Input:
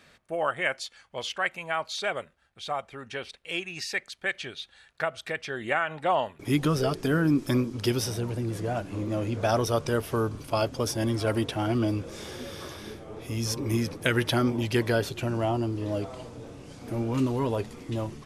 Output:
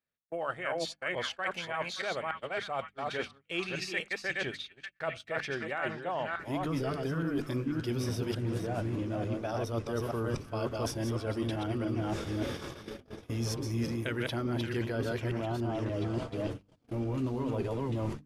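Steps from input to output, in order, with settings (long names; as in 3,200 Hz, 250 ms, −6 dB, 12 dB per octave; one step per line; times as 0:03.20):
delay that plays each chunk backwards 289 ms, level −3 dB
on a send: echo through a band-pass that steps 576 ms, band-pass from 1,500 Hz, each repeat 0.7 octaves, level −11 dB
on the sum: noise gate −36 dBFS, range −38 dB
high-shelf EQ 3,300 Hz −9 dB
mains-hum notches 50/100/150/200/250/300 Hz
reversed playback
downward compressor 10 to 1, threshold −33 dBFS, peak gain reduction 14.5 dB
reversed playback
parametric band 860 Hz −2.5 dB 2 octaves
level +4.5 dB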